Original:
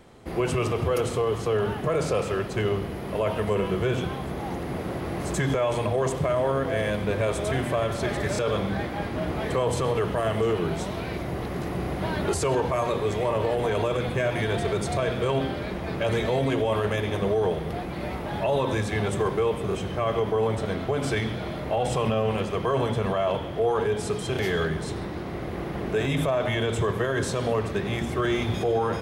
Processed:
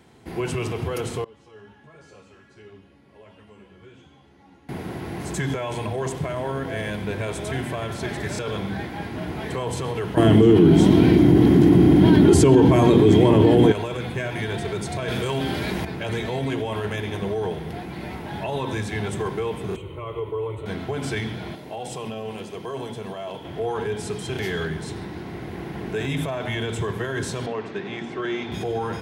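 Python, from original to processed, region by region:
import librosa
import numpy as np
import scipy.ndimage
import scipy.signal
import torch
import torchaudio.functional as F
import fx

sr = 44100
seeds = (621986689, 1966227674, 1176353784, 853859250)

y = fx.chain(x, sr, fx.lowpass(hz=7500.0, slope=12),
    fx.comb_fb(f0_hz=280.0, decay_s=0.81, harmonics='all', damping=0.0, mix_pct=90),
    fx.ensemble(), at=(1.24, 4.69))
y = fx.chain(y, sr, fx.peak_eq(hz=140.0, db=10.0, octaves=2.8),
    fx.small_body(hz=(300.0, 3200.0), ring_ms=35, db=14),
    fx.env_flatten(amount_pct=70), at=(10.17, 13.72))
y = fx.chain(y, sr, fx.high_shelf(hz=4300.0, db=9.0),
    fx.clip_hard(threshold_db=-16.5),
    fx.env_flatten(amount_pct=70), at=(15.08, 15.85))
y = fx.chain(y, sr, fx.high_shelf(hz=2000.0, db=-9.0),
    fx.fixed_phaser(hz=1100.0, stages=8), at=(19.76, 20.66))
y = fx.chain(y, sr, fx.highpass(hz=350.0, slope=6),
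    fx.peak_eq(hz=1600.0, db=-8.0, octaves=2.0), at=(21.55, 23.45))
y = fx.chain(y, sr, fx.highpass(hz=220.0, slope=12),
    fx.air_absorb(metres=120.0), at=(27.46, 28.52))
y = scipy.signal.sosfilt(scipy.signal.butter(2, 72.0, 'highpass', fs=sr, output='sos'), y)
y = fx.peak_eq(y, sr, hz=560.0, db=-8.5, octaves=0.46)
y = fx.notch(y, sr, hz=1200.0, q=7.0)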